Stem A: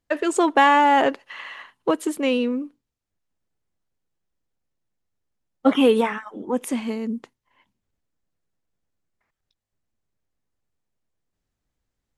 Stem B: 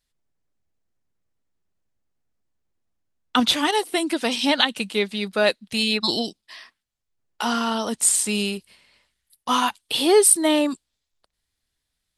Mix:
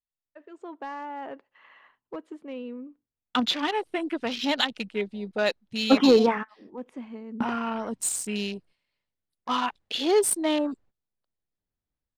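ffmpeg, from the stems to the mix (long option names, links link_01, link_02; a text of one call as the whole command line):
ffmpeg -i stem1.wav -i stem2.wav -filter_complex "[0:a]lowpass=frequency=1700:poles=1,dynaudnorm=framelen=110:gausssize=7:maxgain=16dB,volume=4dB,asoftclip=hard,volume=-4dB,adelay=250,volume=-6.5dB[link_01];[1:a]afwtdn=0.0355,volume=-5.5dB,asplit=2[link_02][link_03];[link_03]apad=whole_len=548160[link_04];[link_01][link_04]sidechaingate=range=-18dB:threshold=-53dB:ratio=16:detection=peak[link_05];[link_05][link_02]amix=inputs=2:normalize=0,adynamicsmooth=sensitivity=4:basefreq=7300" out.wav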